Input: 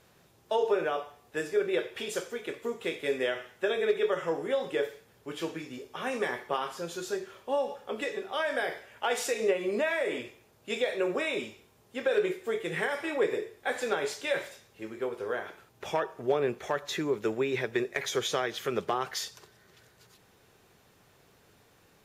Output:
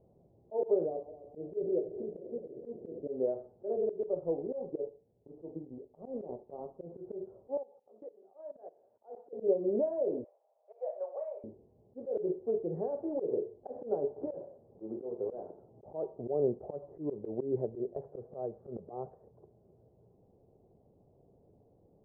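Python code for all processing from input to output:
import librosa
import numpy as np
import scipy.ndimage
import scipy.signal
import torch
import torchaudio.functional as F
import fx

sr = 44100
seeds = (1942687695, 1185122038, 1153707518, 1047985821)

y = fx.chain(x, sr, fx.reverse_delay_fb(ms=129, feedback_pct=79, wet_db=-13.5),
    fx.gaussian_blur(sigma=11.0), at=(0.86, 3.08))
y = fx.chain(y, sr, fx.law_mismatch(coded='A'),
    fx.lowpass(hz=1000.0, slope=12), at=(3.76, 6.86))
y = fx.chain(y, sr, fx.highpass(hz=1200.0, slope=6),
    fx.level_steps(step_db=19), at=(7.57, 9.33))
y = fx.chain(y, sr, fx.steep_highpass(hz=580.0, slope=48),
    fx.peak_eq(hz=3300.0, db=13.0, octaves=1.3),
    fx.room_flutter(wall_m=5.8, rt60_s=0.2), at=(10.24, 11.44))
y = fx.chain(y, sr, fx.block_float(bits=3),
    fx.highpass(hz=130.0, slope=6),
    fx.band_squash(depth_pct=70), at=(14.16, 15.85))
y = fx.chain(y, sr, fx.lowpass(hz=2000.0, slope=12),
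    fx.peak_eq(hz=310.0, db=-7.5, octaves=0.54), at=(17.94, 19.24))
y = scipy.signal.sosfilt(scipy.signal.butter(6, 700.0, 'lowpass', fs=sr, output='sos'), y)
y = fx.auto_swell(y, sr, attack_ms=107.0)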